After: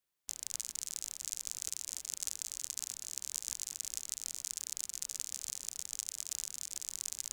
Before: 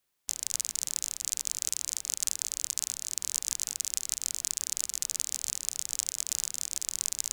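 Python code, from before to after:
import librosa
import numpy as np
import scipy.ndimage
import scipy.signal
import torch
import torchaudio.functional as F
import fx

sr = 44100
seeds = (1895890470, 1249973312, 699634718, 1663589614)

y = x + 10.0 ** (-12.5 / 20.0) * np.pad(x, (int(323 * sr / 1000.0), 0))[:len(x)]
y = y * librosa.db_to_amplitude(-8.0)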